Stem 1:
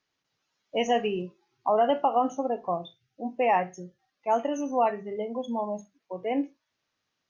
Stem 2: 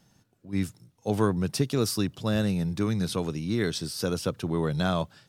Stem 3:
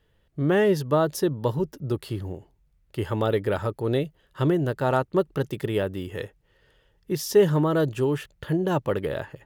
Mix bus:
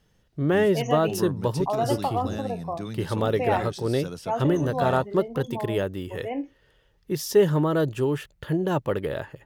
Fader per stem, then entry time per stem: −3.0, −8.0, −0.5 decibels; 0.00, 0.00, 0.00 seconds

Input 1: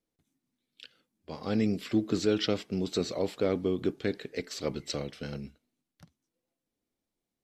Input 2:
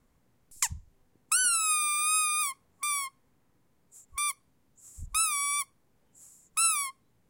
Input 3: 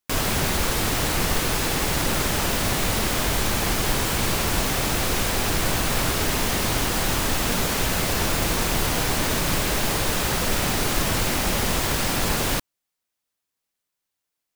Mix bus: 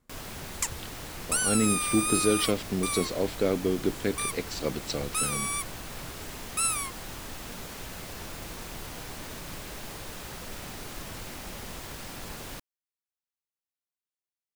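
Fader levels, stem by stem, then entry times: +2.0, −2.0, −17.0 decibels; 0.00, 0.00, 0.00 seconds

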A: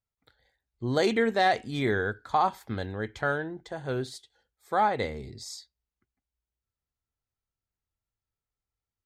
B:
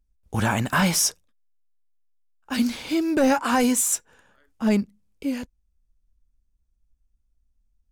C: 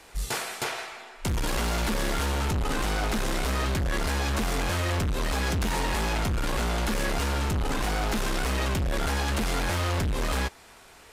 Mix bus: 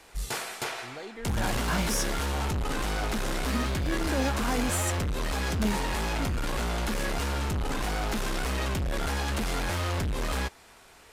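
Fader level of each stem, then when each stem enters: −17.5, −10.5, −2.5 decibels; 0.00, 0.95, 0.00 seconds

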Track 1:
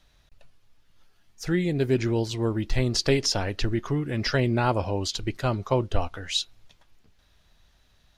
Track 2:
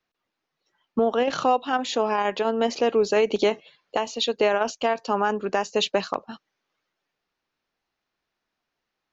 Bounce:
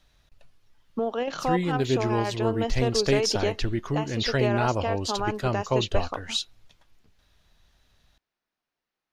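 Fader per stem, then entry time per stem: −1.5, −6.0 decibels; 0.00, 0.00 seconds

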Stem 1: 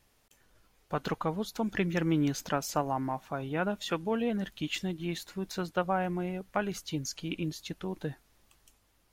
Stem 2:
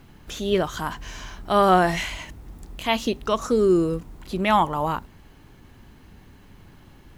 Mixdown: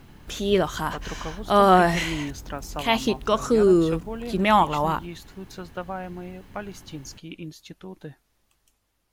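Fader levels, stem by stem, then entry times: −3.5, +1.0 decibels; 0.00, 0.00 seconds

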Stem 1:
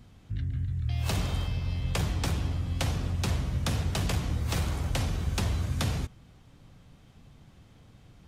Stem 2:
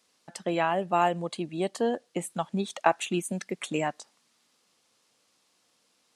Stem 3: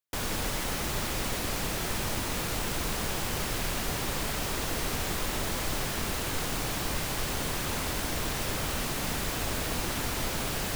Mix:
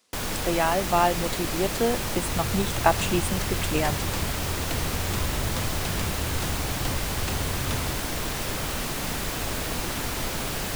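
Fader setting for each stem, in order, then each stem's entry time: −3.0, +2.5, +2.0 decibels; 1.90, 0.00, 0.00 seconds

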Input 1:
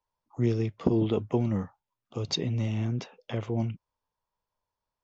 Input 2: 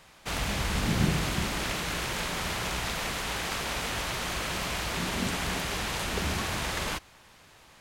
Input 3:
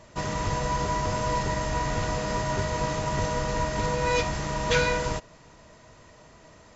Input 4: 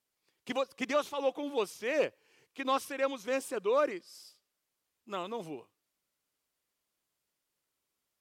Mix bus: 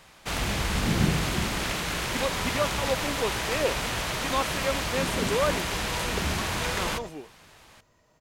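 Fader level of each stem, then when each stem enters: −15.5, +2.0, −13.0, +2.0 decibels; 0.00, 0.00, 1.90, 1.65 seconds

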